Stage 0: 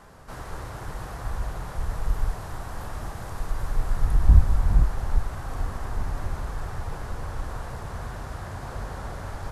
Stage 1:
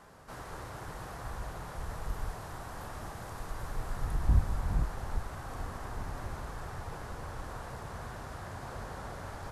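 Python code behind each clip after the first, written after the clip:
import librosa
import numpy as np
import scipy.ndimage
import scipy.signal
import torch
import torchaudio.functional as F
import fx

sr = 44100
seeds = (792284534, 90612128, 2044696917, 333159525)

y = fx.low_shelf(x, sr, hz=72.0, db=-10.0)
y = F.gain(torch.from_numpy(y), -4.5).numpy()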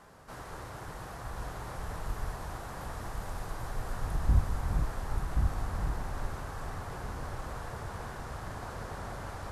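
y = x + 10.0 ** (-3.5 / 20.0) * np.pad(x, (int(1078 * sr / 1000.0), 0))[:len(x)]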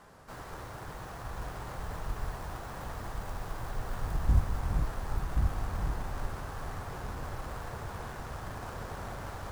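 y = fx.tracing_dist(x, sr, depth_ms=0.2)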